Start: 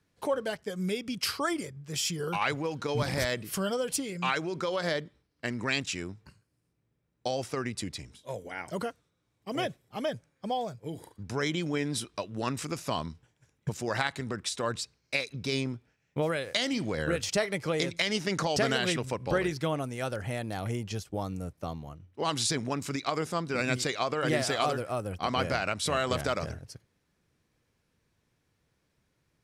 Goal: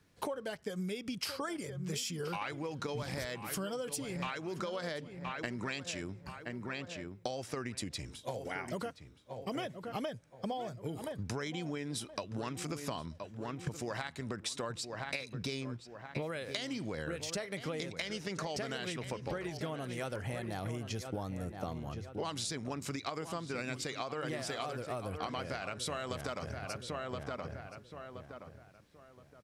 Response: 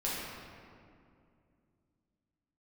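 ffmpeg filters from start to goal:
-filter_complex "[0:a]asplit=2[a][b];[b]adelay=1022,lowpass=f=2.4k:p=1,volume=-12dB,asplit=2[c][d];[d]adelay=1022,lowpass=f=2.4k:p=1,volume=0.29,asplit=2[e][f];[f]adelay=1022,lowpass=f=2.4k:p=1,volume=0.29[g];[a][c][e][g]amix=inputs=4:normalize=0,acompressor=threshold=-40dB:ratio=12,volume=5dB"

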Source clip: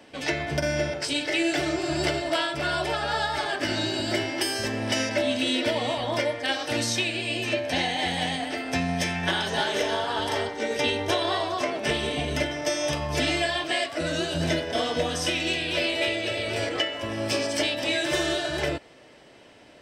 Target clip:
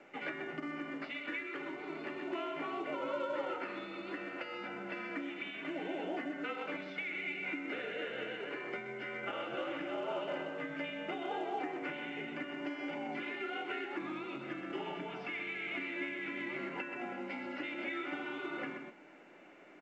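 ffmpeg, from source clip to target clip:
-af "aecho=1:1:127:0.335,afreqshift=-55,acompressor=threshold=-30dB:ratio=10,afreqshift=-250,highpass=f=230:w=0.5412,highpass=f=230:w=1.3066,equalizer=f=230:t=q:w=4:g=-5,equalizer=f=330:t=q:w=4:g=6,equalizer=f=550:t=q:w=4:g=3,equalizer=f=890:t=q:w=4:g=4,equalizer=f=1.5k:t=q:w=4:g=-4,equalizer=f=2.1k:t=q:w=4:g=3,lowpass=f=2.4k:w=0.5412,lowpass=f=2.4k:w=1.3066,aecho=1:1:1.4:0.32,volume=-4dB" -ar 16000 -c:a pcm_mulaw

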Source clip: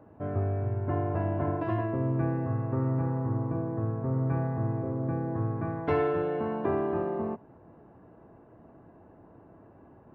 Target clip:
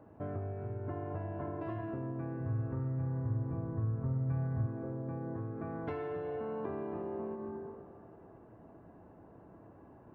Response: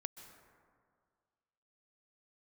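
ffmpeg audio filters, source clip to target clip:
-filter_complex "[1:a]atrim=start_sample=2205[a];[0:a][a]afir=irnorm=-1:irlink=0,acompressor=threshold=-37dB:ratio=6,asplit=3[b][c][d];[b]afade=t=out:st=2.38:d=0.02[e];[c]asubboost=boost=6.5:cutoff=120,afade=t=in:st=2.38:d=0.02,afade=t=out:st=4.65:d=0.02[f];[d]afade=t=in:st=4.65:d=0.02[g];[e][f][g]amix=inputs=3:normalize=0,volume=1dB"

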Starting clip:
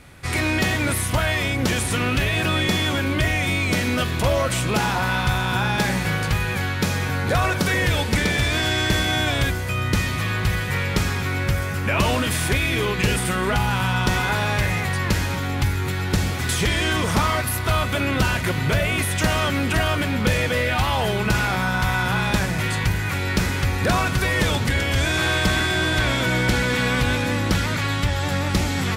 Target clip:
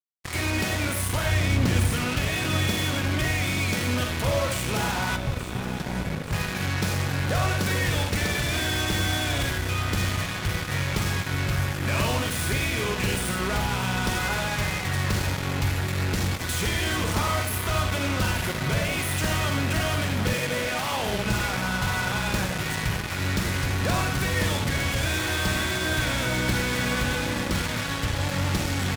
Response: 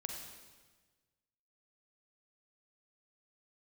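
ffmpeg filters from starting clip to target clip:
-filter_complex "[0:a]asettb=1/sr,asplit=3[a][b][c];[a]atrim=end=1.264[d];[b]atrim=start=1.26:end=1.93,asetpts=PTS-STARTPTS,afade=t=in:d=0.004:c=qsin,afade=t=out:st=0.666:d=0.004:c=qsin,bass=f=250:g=8,treble=f=4k:g=-4[e];[c]atrim=start=1.926[f];[d][e]acrossfade=d=0.004:c1=hsin:c2=qsin[g];[g][f]acrossfade=d=0.004:c1=qsin:c2=hsin[h];[1:a]atrim=start_sample=2205,afade=t=out:st=0.16:d=0.01,atrim=end_sample=7497[i];[h][i]afir=irnorm=-1:irlink=0,asettb=1/sr,asplit=3[j][k][l];[j]atrim=end=5.164[m];[k]atrim=start=5.16:end=6.33,asetpts=PTS-STARTPTS,afade=t=in:d=0.004:c=qsin,afade=t=out:st=1.166:d=0.004:c=qsin,acrossover=split=370[n][o];[o]acompressor=threshold=-41dB:ratio=3[p];[n][p]amix=inputs=2:normalize=0[q];[l]atrim=start=6.326[r];[m][q]acrossfade=d=0.004:c1=hsin:c2=qsin[s];[s][r]acrossfade=d=0.004:c1=qsin:c2=hsin,acrusher=bits=3:mix=0:aa=0.5,asettb=1/sr,asplit=3[t][u][v];[t]atrim=end=20.334[w];[u]atrim=start=20.33:end=21.09,asetpts=PTS-STARTPTS,afade=t=in:d=0.004:c=qsin,afade=t=out:st=0.756:d=0.004:c=qsin,highpass=f=160:w=0.5412,highpass=f=160:w=1.3066[x];[v]atrim=start=21.086[y];[w][x]acrossfade=d=0.004:c1=hsin:c2=qsin[z];[z][y]acrossfade=d=0.004:c1=qsin:c2=hsin,aecho=1:1:876|1752|2628|3504|4380|5256:0.224|0.125|0.0702|0.0393|0.022|0.0123,volume=-4dB"

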